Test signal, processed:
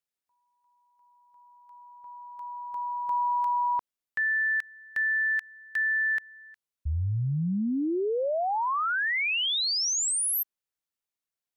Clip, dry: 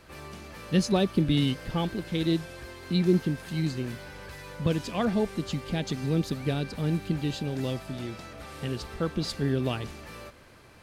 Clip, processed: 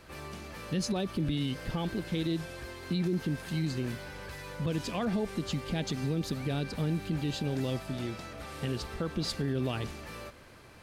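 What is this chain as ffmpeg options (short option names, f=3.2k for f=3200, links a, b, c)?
-af "alimiter=limit=-23dB:level=0:latency=1:release=49"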